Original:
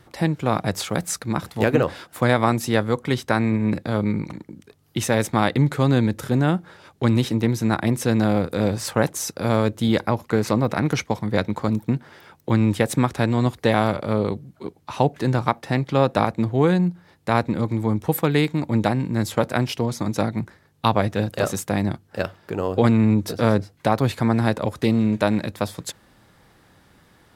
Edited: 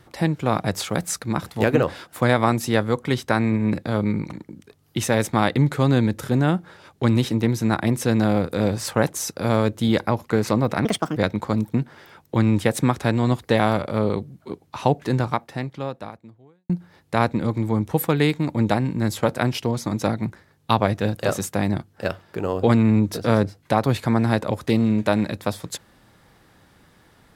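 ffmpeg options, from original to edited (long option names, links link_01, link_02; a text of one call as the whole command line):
ffmpeg -i in.wav -filter_complex "[0:a]asplit=4[link_01][link_02][link_03][link_04];[link_01]atrim=end=10.854[link_05];[link_02]atrim=start=10.85:end=11.31,asetpts=PTS-STARTPTS,asetrate=64386,aresample=44100[link_06];[link_03]atrim=start=11.306:end=16.84,asetpts=PTS-STARTPTS,afade=type=out:start_time=3.944:duration=1.59:curve=qua[link_07];[link_04]atrim=start=16.84,asetpts=PTS-STARTPTS,afade=type=in:duration=0.004:curve=hsin[link_08];[link_05][link_06]acrossfade=duration=0.004:curve1=hsin:curve2=hsin[link_09];[link_07][link_08]concat=n=2:v=0:a=1[link_10];[link_09][link_10]acrossfade=duration=0.004:curve1=hsin:curve2=hsin" out.wav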